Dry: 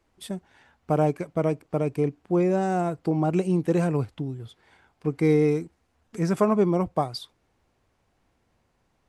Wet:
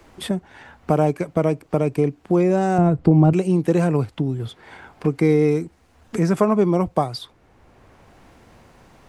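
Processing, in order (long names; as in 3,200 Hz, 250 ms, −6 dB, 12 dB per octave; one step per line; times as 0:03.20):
in parallel at +1 dB: downward compressor, threshold −31 dBFS, peak gain reduction 14.5 dB
0:02.78–0:03.33: on the sum: RIAA equalisation playback
multiband upward and downward compressor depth 40%
level +2 dB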